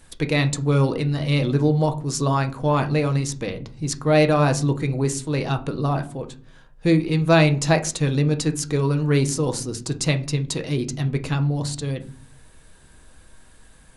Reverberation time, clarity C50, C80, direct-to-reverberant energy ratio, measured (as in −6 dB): 0.40 s, 16.5 dB, 21.0 dB, 6.0 dB